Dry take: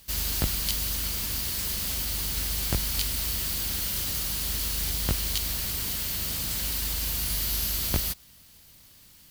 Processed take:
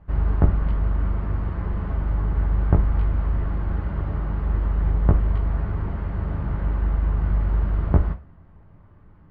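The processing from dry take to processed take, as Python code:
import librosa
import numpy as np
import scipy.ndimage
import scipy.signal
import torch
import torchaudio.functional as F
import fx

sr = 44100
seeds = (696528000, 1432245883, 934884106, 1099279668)

y = scipy.signal.sosfilt(scipy.signal.butter(4, 1300.0, 'lowpass', fs=sr, output='sos'), x)
y = fx.low_shelf(y, sr, hz=130.0, db=6.5)
y = fx.rev_double_slope(y, sr, seeds[0], early_s=0.27, late_s=1.6, knee_db=-28, drr_db=4.5)
y = F.gain(torch.from_numpy(y), 7.0).numpy()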